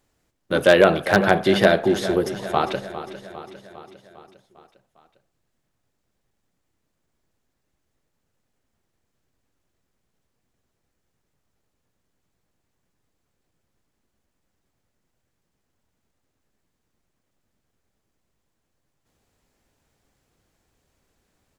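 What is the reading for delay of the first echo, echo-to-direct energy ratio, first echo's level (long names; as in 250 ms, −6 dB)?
403 ms, −11.5 dB, −13.5 dB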